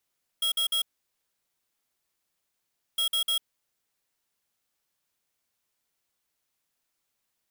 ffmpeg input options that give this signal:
-f lavfi -i "aevalsrc='0.0501*(2*lt(mod(3290*t,1),0.5)-1)*clip(min(mod(mod(t,2.56),0.15),0.1-mod(mod(t,2.56),0.15))/0.005,0,1)*lt(mod(t,2.56),0.45)':d=5.12:s=44100"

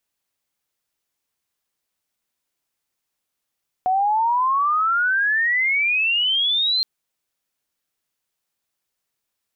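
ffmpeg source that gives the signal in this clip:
-f lavfi -i "aevalsrc='pow(10,(-16-1*t/2.97)/20)*sin(2*PI*730*2.97/log(4200/730)*(exp(log(4200/730)*t/2.97)-1))':d=2.97:s=44100"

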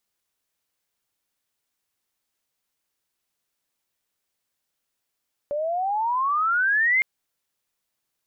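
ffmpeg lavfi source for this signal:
-f lavfi -i "aevalsrc='pow(10,(-16.5+7*(t/1.51-1))/20)*sin(2*PI*569*1.51/(23*log(2)/12)*(exp(23*log(2)/12*t/1.51)-1))':d=1.51:s=44100"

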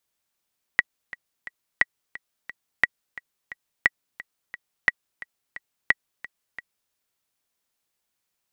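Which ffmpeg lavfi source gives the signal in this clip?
-f lavfi -i "aevalsrc='pow(10,(-3.5-19*gte(mod(t,3*60/176),60/176))/20)*sin(2*PI*1930*mod(t,60/176))*exp(-6.91*mod(t,60/176)/0.03)':d=6.13:s=44100"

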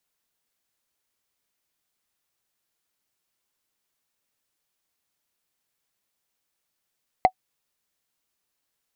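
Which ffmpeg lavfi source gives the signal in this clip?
-f lavfi -i "aevalsrc='0.501*pow(10,-3*t/0.07)*sin(2*PI*747*t)+0.141*pow(10,-3*t/0.021)*sin(2*PI*2059.5*t)+0.0398*pow(10,-3*t/0.009)*sin(2*PI*4036.8*t)+0.0112*pow(10,-3*t/0.005)*sin(2*PI*6673*t)+0.00316*pow(10,-3*t/0.003)*sin(2*PI*9965*t)':d=0.45:s=44100"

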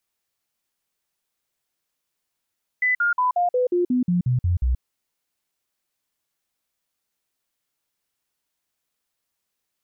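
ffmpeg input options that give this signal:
-f lavfi -i "aevalsrc='0.141*clip(min(mod(t,0.18),0.13-mod(t,0.18))/0.005,0,1)*sin(2*PI*2000*pow(2,-floor(t/0.18)/2)*mod(t,0.18))':d=1.98:s=44100"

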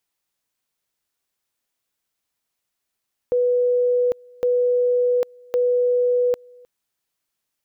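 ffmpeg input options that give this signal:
-f lavfi -i "aevalsrc='pow(10,(-15.5-28*gte(mod(t,1.11),0.8))/20)*sin(2*PI*492*t)':d=3.33:s=44100"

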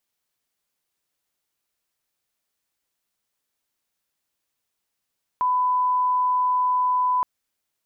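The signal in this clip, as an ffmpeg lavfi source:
-f lavfi -i "sine=f=1000:d=1.82:r=44100,volume=0.06dB"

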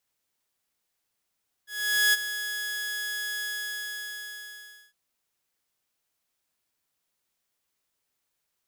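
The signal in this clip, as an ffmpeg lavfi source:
-f lavfi -i "aevalsrc='0.168*(2*mod(1680*t,1)-1)':d=3.26:s=44100,afade=t=in:d=0.462,afade=t=out:st=0.462:d=0.026:silence=0.251,afade=t=out:st=1.75:d=1.51"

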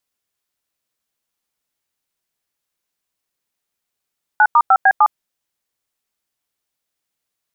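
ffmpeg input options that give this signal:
-f lavfi -i "aevalsrc='0.316*clip(min(mod(t,0.151),0.058-mod(t,0.151))/0.002,0,1)*(eq(floor(t/0.151),0)*(sin(2*PI*852*mod(t,0.151))+sin(2*PI*1477*mod(t,0.151)))+eq(floor(t/0.151),1)*(sin(2*PI*941*mod(t,0.151))+sin(2*PI*1209*mod(t,0.151)))+eq(floor(t/0.151),2)*(sin(2*PI*770*mod(t,0.151))+sin(2*PI*1336*mod(t,0.151)))+eq(floor(t/0.151),3)*(sin(2*PI*770*mod(t,0.151))+sin(2*PI*1633*mod(t,0.151)))+eq(floor(t/0.151),4)*(sin(2*PI*852*mod(t,0.151))+sin(2*PI*1209*mod(t,0.151))))':d=0.755:s=44100"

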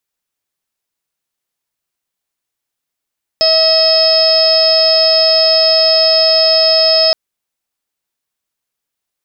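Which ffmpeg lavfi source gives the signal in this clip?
-f lavfi -i "aevalsrc='0.251*sin(2*PI*642*t)+0.0376*sin(2*PI*1284*t)+0.0316*sin(2*PI*1926*t)+0.0398*sin(2*PI*2568*t)+0.0355*sin(2*PI*3210*t)+0.0398*sin(2*PI*3852*t)+0.112*sin(2*PI*4494*t)+0.335*sin(2*PI*5136*t)':d=3.72:s=44100"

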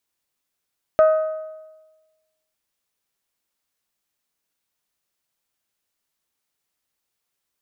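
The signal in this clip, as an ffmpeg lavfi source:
-f lavfi -i "aevalsrc='0.355*pow(10,-3*t/1.22)*sin(2*PI*629*t)+0.1*pow(10,-3*t/0.991)*sin(2*PI*1258*t)+0.0282*pow(10,-3*t/0.938)*sin(2*PI*1509.6*t)+0.00794*pow(10,-3*t/0.877)*sin(2*PI*1887*t)+0.00224*pow(10,-3*t/0.805)*sin(2*PI*2516*t)':d=1.55:s=44100"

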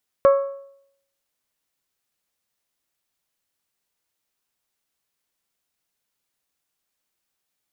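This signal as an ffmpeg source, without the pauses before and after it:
-f lavfi -i "aevalsrc='0.376*pow(10,-3*t/0.7)*sin(2*PI*553*t)+0.133*pow(10,-3*t/0.569)*sin(2*PI*1106*t)+0.0473*pow(10,-3*t/0.538)*sin(2*PI*1327.2*t)+0.0168*pow(10,-3*t/0.503)*sin(2*PI*1659*t)+0.00596*pow(10,-3*t/0.462)*sin(2*PI*2212*t)':d=1.55:s=44100"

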